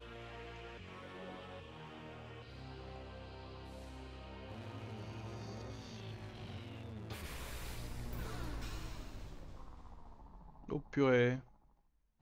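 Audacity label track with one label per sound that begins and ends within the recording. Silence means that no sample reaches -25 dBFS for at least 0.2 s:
11.000000	11.280000	sound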